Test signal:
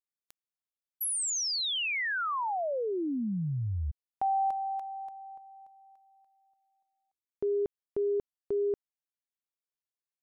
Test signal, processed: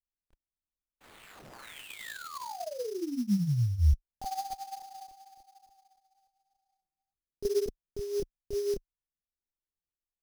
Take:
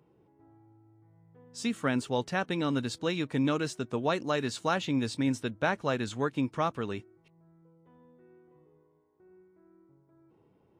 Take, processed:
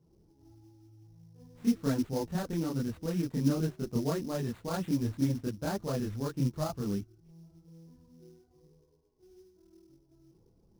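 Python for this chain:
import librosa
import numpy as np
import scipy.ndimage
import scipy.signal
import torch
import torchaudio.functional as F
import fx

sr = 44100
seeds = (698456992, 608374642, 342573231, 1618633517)

y = fx.tilt_eq(x, sr, slope=-4.5)
y = fx.chorus_voices(y, sr, voices=6, hz=1.1, base_ms=27, depth_ms=3.1, mix_pct=60)
y = fx.sample_hold(y, sr, seeds[0], rate_hz=5600.0, jitter_pct=20)
y = y * librosa.db_to_amplitude(-6.0)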